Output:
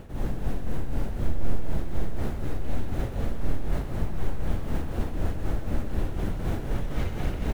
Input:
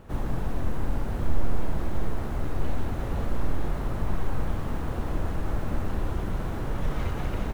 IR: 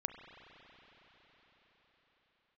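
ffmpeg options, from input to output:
-af "equalizer=f=1.1k:t=o:w=0.91:g=-6.5,areverse,acompressor=mode=upward:threshold=-20dB:ratio=2.5,areverse,tremolo=f=4:d=0.63,aecho=1:1:127:0.282,volume=1.5dB"

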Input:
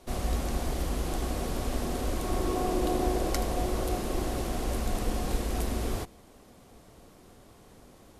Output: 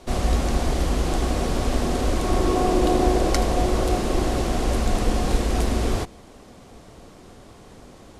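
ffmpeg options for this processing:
-af "lowpass=8.5k,volume=8.5dB"

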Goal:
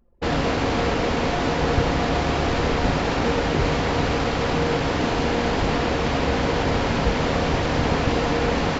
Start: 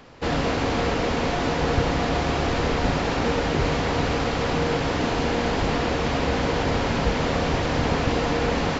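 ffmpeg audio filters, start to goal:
-af "anlmdn=3.98,volume=1.5dB"

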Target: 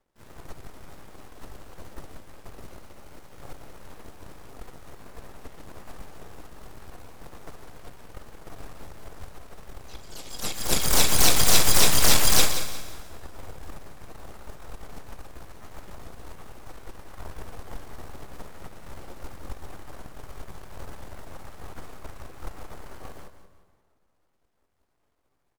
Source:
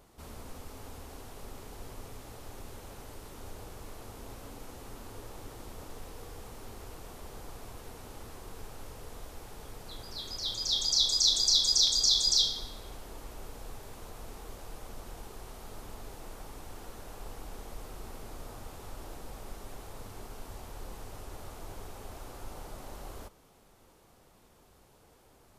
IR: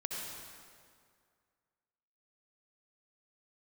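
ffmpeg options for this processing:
-filter_complex "[0:a]highshelf=f=2.7k:g=-5,bandreject=f=60:t=h:w=6,bandreject=f=120:t=h:w=6,bandreject=f=180:t=h:w=6,bandreject=f=240:t=h:w=6,bandreject=f=300:t=h:w=6,bandreject=f=360:t=h:w=6,bandreject=f=420:t=h:w=6,aeval=exprs='0.211*(cos(1*acos(clip(val(0)/0.211,-1,1)))-cos(1*PI/2))+0.0133*(cos(5*acos(clip(val(0)/0.211,-1,1)))-cos(5*PI/2))+0.0376*(cos(7*acos(clip(val(0)/0.211,-1,1)))-cos(7*PI/2))+0.0668*(cos(8*acos(clip(val(0)/0.211,-1,1)))-cos(8*PI/2))':c=same,asplit=3[a][b][c];[b]asetrate=29433,aresample=44100,atempo=1.49831,volume=-5dB[d];[c]asetrate=66075,aresample=44100,atempo=0.66742,volume=-1dB[e];[a][d][e]amix=inputs=3:normalize=0,aecho=1:1:178|356|534:0.266|0.0851|0.0272,asplit=2[f][g];[1:a]atrim=start_sample=2205,adelay=71[h];[g][h]afir=irnorm=-1:irlink=0,volume=-16dB[i];[f][i]amix=inputs=2:normalize=0,volume=3dB"

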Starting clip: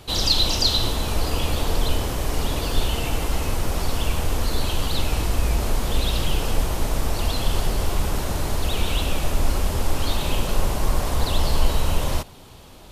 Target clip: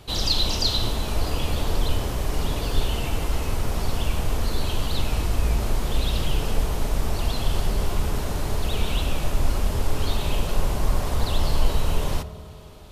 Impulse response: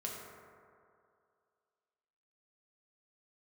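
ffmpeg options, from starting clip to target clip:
-filter_complex "[0:a]asplit=2[a][b];[1:a]atrim=start_sample=2205,lowpass=6.9k,lowshelf=f=240:g=10[c];[b][c]afir=irnorm=-1:irlink=0,volume=-10.5dB[d];[a][d]amix=inputs=2:normalize=0,volume=-4.5dB"

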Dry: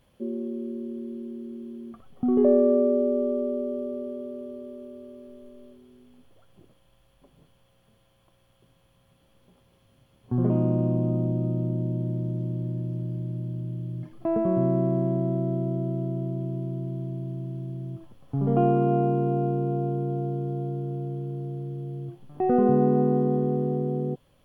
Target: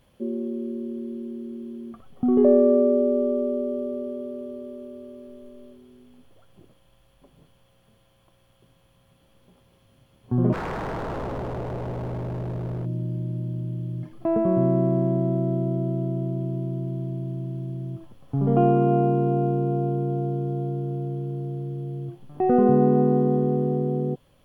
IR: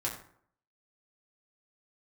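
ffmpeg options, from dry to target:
-filter_complex "[0:a]asplit=3[a][b][c];[a]afade=t=out:st=10.52:d=0.02[d];[b]aeval=exprs='0.0422*(abs(mod(val(0)/0.0422+3,4)-2)-1)':c=same,afade=t=in:st=10.52:d=0.02,afade=t=out:st=12.84:d=0.02[e];[c]afade=t=in:st=12.84:d=0.02[f];[d][e][f]amix=inputs=3:normalize=0,volume=2.5dB"

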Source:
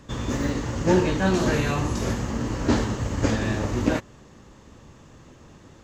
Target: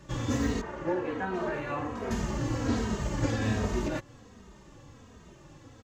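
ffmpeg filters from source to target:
-filter_complex "[0:a]alimiter=limit=-15dB:level=0:latency=1:release=228,asettb=1/sr,asplit=3[a][b][c];[a]atrim=end=0.614[d];[b]atrim=start=0.61:end=2.11,asetpts=PTS-STARTPTS,afade=t=in:d=0.004:c=qsin,afade=t=out:st=1.496:d=0.004:c=qsin,acrossover=split=310 2300:gain=0.2 1 0.112[e][f][g];[e][f][g]amix=inputs=3:normalize=0[h];[c]atrim=start=2.106[i];[d][h]acrossfade=d=0.004:c1=hsin:c2=qsin[j];[j][i]acrossfade=d=0.004:c1=qsin:c2=hsin,asplit=2[k][l];[l]adelay=2.9,afreqshift=-1.3[m];[k][m]amix=inputs=2:normalize=1"

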